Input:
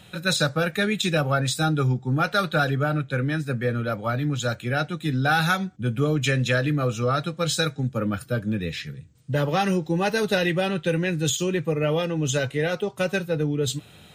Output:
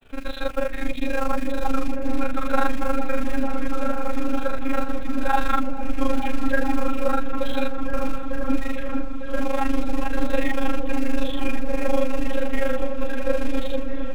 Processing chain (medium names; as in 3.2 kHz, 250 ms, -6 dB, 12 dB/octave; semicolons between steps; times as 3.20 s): rattle on loud lows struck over -35 dBFS, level -32 dBFS; high-pass 180 Hz 12 dB/octave; treble shelf 2.6 kHz -10.5 dB; band-stop 560 Hz, Q 15; monotone LPC vocoder at 8 kHz 270 Hz; dynamic bell 360 Hz, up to -8 dB, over -42 dBFS, Q 1.1; in parallel at -0.5 dB: peak limiter -22.5 dBFS, peak gain reduction 10.5 dB; on the sum: granulator 100 ms, spray 39 ms, pitch spread up and down by 0 st; short-mantissa float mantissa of 2-bit; granulator 49 ms, grains 25 per s, spray 16 ms, pitch spread up and down by 0 st; harmonic-percussive split percussive -16 dB; on a send: delay with an opening low-pass 450 ms, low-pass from 400 Hz, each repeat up 1 oct, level -3 dB; on the sum: trim +6 dB